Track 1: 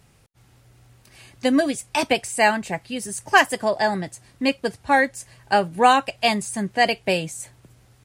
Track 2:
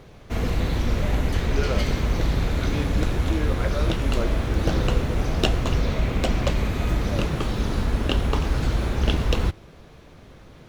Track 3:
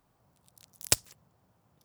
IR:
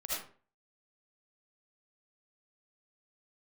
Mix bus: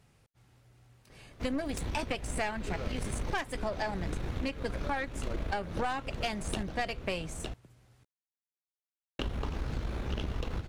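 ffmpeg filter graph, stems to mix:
-filter_complex "[0:a]volume=0.631,asplit=2[s0][s1];[1:a]adelay=1100,volume=0.473,asplit=3[s2][s3][s4];[s2]atrim=end=6.63,asetpts=PTS-STARTPTS,afade=t=out:st=6.626:d=0.004:c=hsin[s5];[s3]atrim=start=6.63:end=9.19,asetpts=PTS-STARTPTS,volume=0[s6];[s4]atrim=start=9.19,asetpts=PTS-STARTPTS,afade=t=in:d=0.004:c=hsin[s7];[s5][s6][s7]concat=n=3:v=0:a=1,asplit=2[s8][s9];[s9]volume=0.376[s10];[2:a]adelay=850,volume=0.211[s11];[s1]apad=whole_len=519778[s12];[s8][s12]sidechaincompress=threshold=0.0631:ratio=8:attack=6.2:release=449[s13];[s10]aecho=0:1:909:1[s14];[s0][s13][s11][s14]amix=inputs=4:normalize=0,highshelf=f=6200:g=-6,aeval=exprs='(tanh(7.08*val(0)+0.65)-tanh(0.65))/7.08':c=same,acompressor=threshold=0.0355:ratio=6"

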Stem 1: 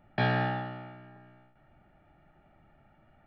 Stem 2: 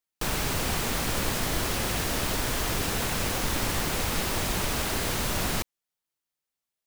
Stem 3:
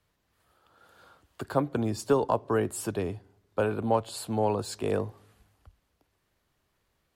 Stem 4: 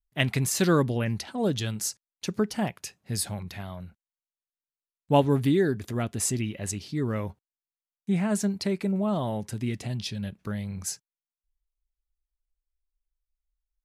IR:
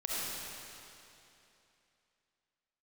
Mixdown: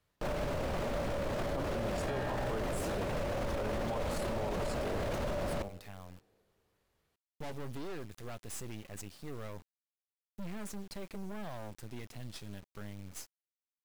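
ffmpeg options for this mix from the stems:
-filter_complex "[0:a]adelay=1900,volume=0.794[s0];[1:a]lowpass=f=1100:p=1,equalizer=f=580:t=o:w=0.29:g=14.5,bandreject=f=99.65:t=h:w=4,bandreject=f=199.3:t=h:w=4,bandreject=f=298.95:t=h:w=4,bandreject=f=398.6:t=h:w=4,bandreject=f=498.25:t=h:w=4,bandreject=f=597.9:t=h:w=4,bandreject=f=697.55:t=h:w=4,bandreject=f=797.2:t=h:w=4,volume=1.12[s1];[2:a]volume=0.562,asplit=2[s2][s3];[s3]volume=0.119[s4];[3:a]equalizer=f=310:t=o:w=0.98:g=-2.5,volume=21.1,asoftclip=hard,volume=0.0473,acrusher=bits=5:dc=4:mix=0:aa=0.000001,adelay=2300,volume=0.376[s5];[4:a]atrim=start_sample=2205[s6];[s4][s6]afir=irnorm=-1:irlink=0[s7];[s0][s1][s2][s5][s7]amix=inputs=5:normalize=0,alimiter=level_in=1.5:limit=0.0631:level=0:latency=1:release=12,volume=0.668"

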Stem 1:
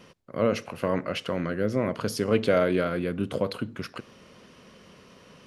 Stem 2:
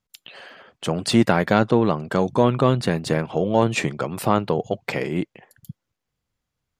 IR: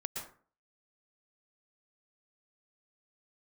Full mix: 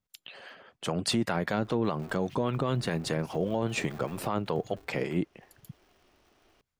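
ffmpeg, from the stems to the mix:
-filter_complex "[0:a]alimiter=limit=0.0794:level=0:latency=1:release=33,aeval=exprs='val(0)*sgn(sin(2*PI*180*n/s))':c=same,adelay=1150,volume=0.2,asplit=2[s0][s1];[s1]volume=0.126[s2];[1:a]acrossover=split=620[s3][s4];[s3]aeval=exprs='val(0)*(1-0.5/2+0.5/2*cos(2*PI*5*n/s))':c=same[s5];[s4]aeval=exprs='val(0)*(1-0.5/2-0.5/2*cos(2*PI*5*n/s))':c=same[s6];[s5][s6]amix=inputs=2:normalize=0,volume=0.708,asplit=2[s7][s8];[s8]apad=whole_len=291549[s9];[s0][s9]sidechaincompress=threshold=0.02:ratio=4:attack=7.7:release=207[s10];[2:a]atrim=start_sample=2205[s11];[s2][s11]afir=irnorm=-1:irlink=0[s12];[s10][s7][s12]amix=inputs=3:normalize=0,alimiter=limit=0.133:level=0:latency=1:release=59"

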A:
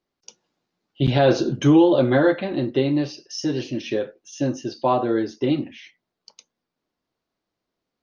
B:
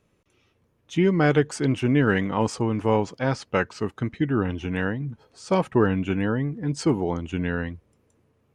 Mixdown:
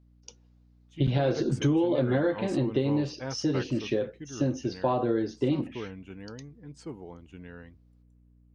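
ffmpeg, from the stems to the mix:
-filter_complex "[0:a]lowshelf=f=180:g=9.5,volume=0.596[s0];[1:a]volume=0.237,afade=t=in:st=0.9:d=0.44:silence=0.266073,afade=t=out:st=3.7:d=0.27:silence=0.473151[s1];[s0][s1]amix=inputs=2:normalize=0,equalizer=f=480:t=o:w=0.24:g=4,aeval=exprs='val(0)+0.00126*(sin(2*PI*60*n/s)+sin(2*PI*2*60*n/s)/2+sin(2*PI*3*60*n/s)/3+sin(2*PI*4*60*n/s)/4+sin(2*PI*5*60*n/s)/5)':c=same,acompressor=threshold=0.0794:ratio=5"

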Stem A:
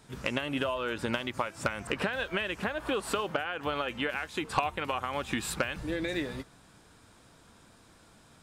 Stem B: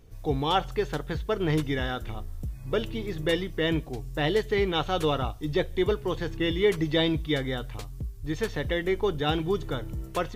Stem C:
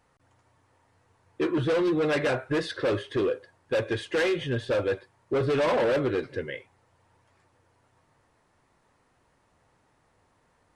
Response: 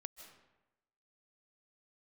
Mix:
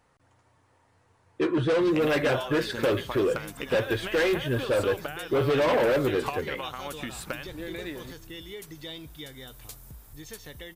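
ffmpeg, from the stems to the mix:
-filter_complex "[0:a]adelay=1700,volume=0.596[s0];[1:a]aemphasis=mode=production:type=cd,acompressor=threshold=0.02:ratio=2.5,crystalizer=i=2.5:c=0,adelay=1900,volume=0.335[s1];[2:a]volume=1.12[s2];[s0][s1][s2]amix=inputs=3:normalize=0"

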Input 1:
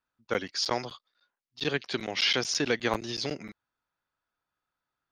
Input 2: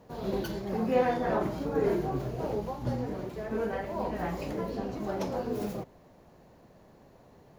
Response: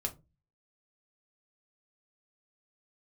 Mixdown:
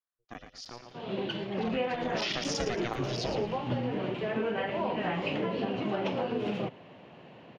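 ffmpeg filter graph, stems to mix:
-filter_complex "[0:a]aeval=exprs='val(0)*sin(2*PI*240*n/s)':c=same,volume=0.944,afade=t=in:st=1.65:d=0.53:silence=0.237137,asplit=3[s0][s1][s2];[s1]volume=0.376[s3];[1:a]lowpass=f=2900:t=q:w=4.8,dynaudnorm=f=360:g=5:m=2.37,highpass=f=110:w=0.5412,highpass=f=110:w=1.3066,adelay=850,volume=0.794[s4];[s2]apad=whole_len=371856[s5];[s4][s5]sidechaincompress=threshold=0.0178:ratio=8:attack=7.2:release=103[s6];[s3]aecho=0:1:113|226|339|452|565:1|0.35|0.122|0.0429|0.015[s7];[s0][s6][s7]amix=inputs=3:normalize=0,acompressor=threshold=0.0447:ratio=12"

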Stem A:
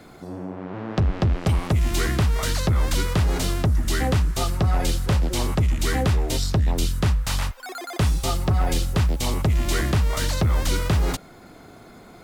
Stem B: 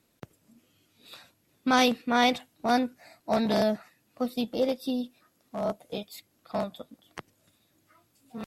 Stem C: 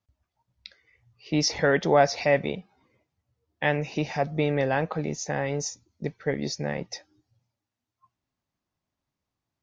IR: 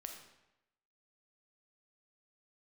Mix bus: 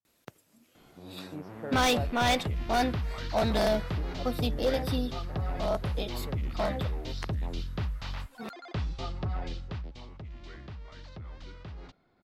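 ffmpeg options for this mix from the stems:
-filter_complex "[0:a]lowpass=f=4700:w=0.5412,lowpass=f=4700:w=1.3066,adelay=750,volume=0.251,afade=t=out:st=9.27:d=0.8:silence=0.281838[s0];[1:a]lowshelf=f=370:g=-8,adelay=50,volume=1.26[s1];[2:a]lowpass=1200,volume=0.141[s2];[s0][s1][s2]amix=inputs=3:normalize=0,asoftclip=type=hard:threshold=0.1"

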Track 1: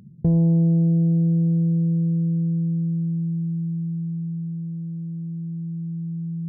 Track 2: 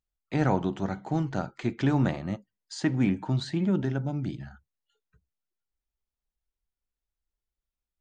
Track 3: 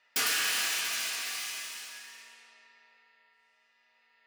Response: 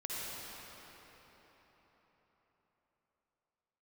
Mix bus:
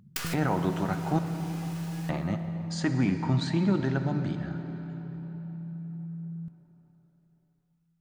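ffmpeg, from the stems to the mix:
-filter_complex "[0:a]lowshelf=f=140:g=8,acompressor=threshold=0.0891:ratio=6,volume=0.2,asplit=2[s0][s1];[s1]volume=0.15[s2];[1:a]alimiter=limit=0.126:level=0:latency=1,volume=0.841,asplit=3[s3][s4][s5];[s3]atrim=end=1.19,asetpts=PTS-STARTPTS,afade=t=out:st=1.186:d=0.004:c=hsin[s6];[s4]atrim=start=1.19:end=2.09,asetpts=PTS-STARTPTS,volume=0[s7];[s5]atrim=start=2.09,asetpts=PTS-STARTPTS,afade=t=in:d=0.004:c=hsin[s8];[s6][s7][s8]concat=n=3:v=0:a=1,asplit=3[s9][s10][s11];[s10]volume=0.398[s12];[2:a]acompressor=threshold=0.0282:ratio=10,acrusher=bits=5:dc=4:mix=0:aa=0.000001,volume=1.06,asplit=2[s13][s14];[s14]volume=0.0708[s15];[s11]apad=whole_len=187966[s16];[s13][s16]sidechaincompress=threshold=0.00631:ratio=8:attack=39:release=771[s17];[3:a]atrim=start_sample=2205[s18];[s2][s12][s15]amix=inputs=3:normalize=0[s19];[s19][s18]afir=irnorm=-1:irlink=0[s20];[s0][s9][s17][s20]amix=inputs=4:normalize=0,equalizer=f=1200:t=o:w=1.3:g=5.5"

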